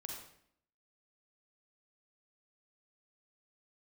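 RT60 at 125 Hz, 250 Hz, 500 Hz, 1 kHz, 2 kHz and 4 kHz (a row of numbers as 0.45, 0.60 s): 0.70, 0.80, 0.70, 0.60, 0.60, 0.55 s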